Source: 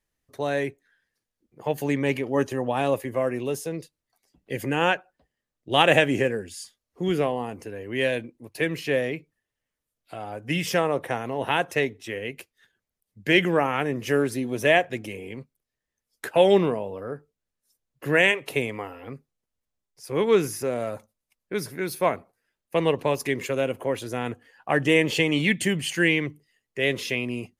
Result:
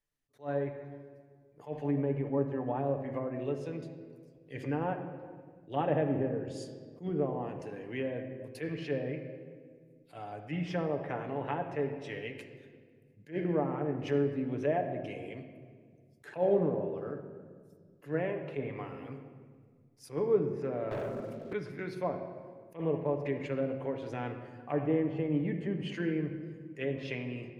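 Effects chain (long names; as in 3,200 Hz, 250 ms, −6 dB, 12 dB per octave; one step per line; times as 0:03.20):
treble cut that deepens with the level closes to 760 Hz, closed at −20 dBFS
on a send at −4 dB: convolution reverb RT60 1.8 s, pre-delay 7 ms
0:20.91–0:21.53: on the sum: leveller curve on the samples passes 3
level that may rise only so fast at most 260 dB per second
level −9 dB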